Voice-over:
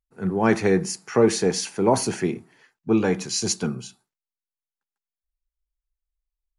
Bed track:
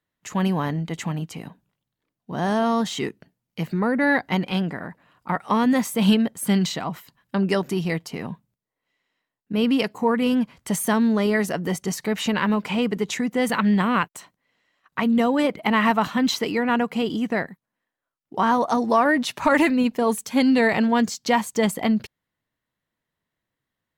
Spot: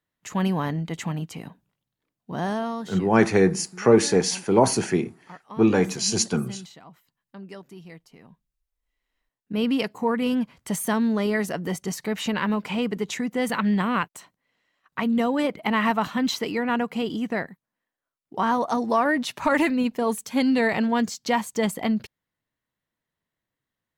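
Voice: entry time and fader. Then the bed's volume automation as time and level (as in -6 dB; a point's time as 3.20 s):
2.70 s, +1.5 dB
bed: 2.36 s -1.5 dB
3.23 s -19 dB
8.57 s -19 dB
9.24 s -3 dB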